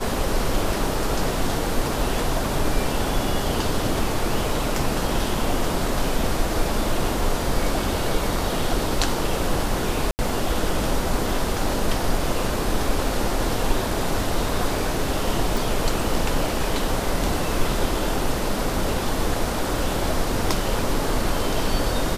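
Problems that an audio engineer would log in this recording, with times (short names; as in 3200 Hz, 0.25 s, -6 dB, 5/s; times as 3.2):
10.11–10.19 gap 79 ms
15.57 pop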